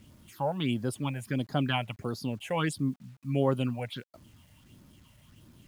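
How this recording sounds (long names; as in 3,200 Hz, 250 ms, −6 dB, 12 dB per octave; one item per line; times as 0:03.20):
phaser sweep stages 6, 1.5 Hz, lowest notch 310–2,700 Hz
a quantiser's noise floor 10 bits, dither none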